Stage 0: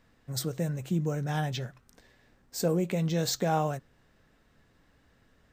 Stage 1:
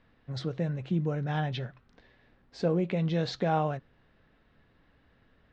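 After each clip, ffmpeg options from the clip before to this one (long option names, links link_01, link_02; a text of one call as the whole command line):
ffmpeg -i in.wav -af "lowpass=frequency=4000:width=0.5412,lowpass=frequency=4000:width=1.3066" out.wav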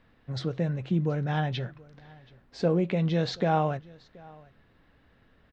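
ffmpeg -i in.wav -af "aecho=1:1:728:0.0631,volume=2.5dB" out.wav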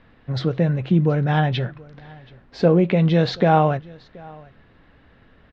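ffmpeg -i in.wav -af "lowpass=4300,volume=9dB" out.wav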